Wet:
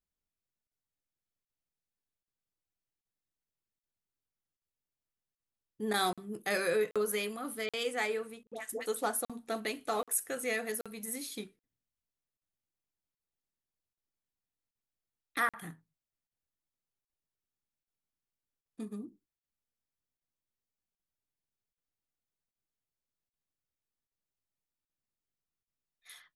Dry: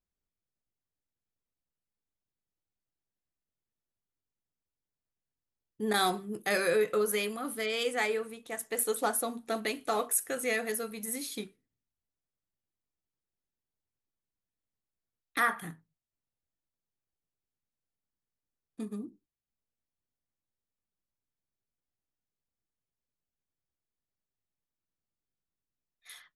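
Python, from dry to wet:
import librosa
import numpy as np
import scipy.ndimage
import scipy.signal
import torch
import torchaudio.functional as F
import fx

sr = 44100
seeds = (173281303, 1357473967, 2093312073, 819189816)

y = fx.dispersion(x, sr, late='highs', ms=102.0, hz=750.0, at=(8.43, 8.86))
y = fx.buffer_crackle(y, sr, first_s=0.67, period_s=0.78, block=2048, kind='zero')
y = y * librosa.db_to_amplitude(-3.0)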